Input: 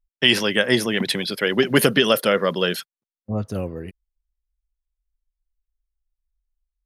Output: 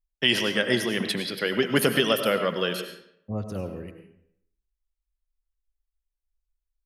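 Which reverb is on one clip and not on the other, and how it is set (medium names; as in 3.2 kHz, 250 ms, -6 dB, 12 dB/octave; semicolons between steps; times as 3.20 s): algorithmic reverb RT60 0.71 s, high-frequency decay 0.75×, pre-delay 60 ms, DRR 7 dB; trim -5.5 dB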